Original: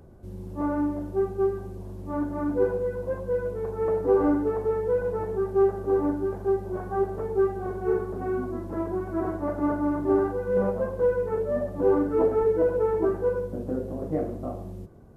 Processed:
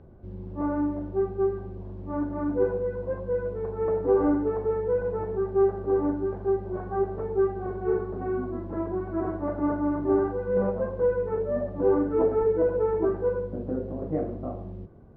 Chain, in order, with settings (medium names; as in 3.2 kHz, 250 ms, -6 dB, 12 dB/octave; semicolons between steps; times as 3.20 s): distance through air 310 m